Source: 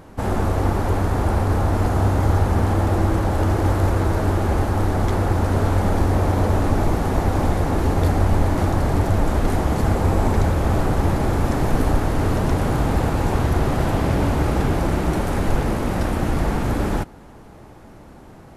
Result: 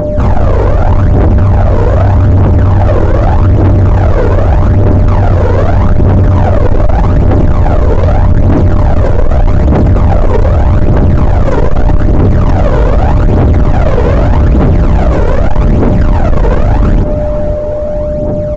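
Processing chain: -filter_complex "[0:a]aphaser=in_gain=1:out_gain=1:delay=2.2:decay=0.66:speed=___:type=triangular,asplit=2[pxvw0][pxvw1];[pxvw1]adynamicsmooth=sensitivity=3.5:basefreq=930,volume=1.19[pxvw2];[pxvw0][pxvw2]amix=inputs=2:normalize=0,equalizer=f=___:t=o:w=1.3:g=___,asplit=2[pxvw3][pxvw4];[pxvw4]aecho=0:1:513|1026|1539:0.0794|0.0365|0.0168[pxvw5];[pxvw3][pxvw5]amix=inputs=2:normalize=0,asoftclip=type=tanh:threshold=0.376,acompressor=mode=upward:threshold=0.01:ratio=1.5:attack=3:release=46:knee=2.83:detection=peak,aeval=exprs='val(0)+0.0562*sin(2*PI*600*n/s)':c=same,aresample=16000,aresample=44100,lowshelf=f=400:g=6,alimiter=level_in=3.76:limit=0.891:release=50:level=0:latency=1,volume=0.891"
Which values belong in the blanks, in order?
0.82, 510, 2.5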